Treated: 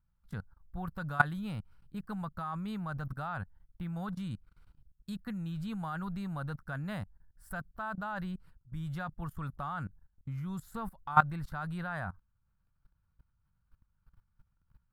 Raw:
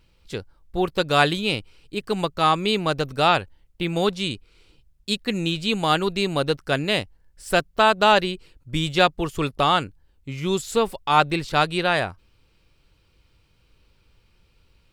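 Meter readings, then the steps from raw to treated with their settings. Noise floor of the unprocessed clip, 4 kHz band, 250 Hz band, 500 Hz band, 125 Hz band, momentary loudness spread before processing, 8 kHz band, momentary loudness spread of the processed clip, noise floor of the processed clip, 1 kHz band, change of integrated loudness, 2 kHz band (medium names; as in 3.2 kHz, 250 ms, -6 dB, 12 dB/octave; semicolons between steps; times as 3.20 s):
-62 dBFS, -30.5 dB, -12.0 dB, -24.5 dB, -8.0 dB, 14 LU, -23.5 dB, 15 LU, -76 dBFS, -14.0 dB, -15.0 dB, -13.0 dB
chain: FFT filter 190 Hz 0 dB, 390 Hz -22 dB, 730 Hz -7 dB, 1.5 kHz -1 dB, 2.5 kHz -22 dB, 7.5 kHz -19 dB, 12 kHz -5 dB; level held to a coarse grid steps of 19 dB; trim +1 dB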